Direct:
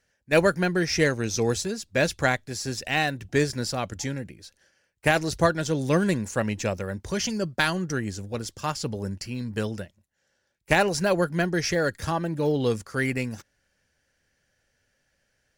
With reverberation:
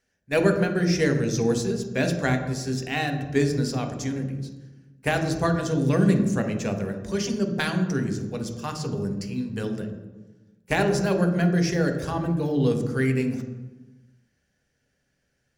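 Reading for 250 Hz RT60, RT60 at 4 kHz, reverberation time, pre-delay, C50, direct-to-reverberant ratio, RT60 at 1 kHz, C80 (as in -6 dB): 1.5 s, 0.80 s, 1.2 s, 3 ms, 7.5 dB, 4.0 dB, 1.1 s, 9.5 dB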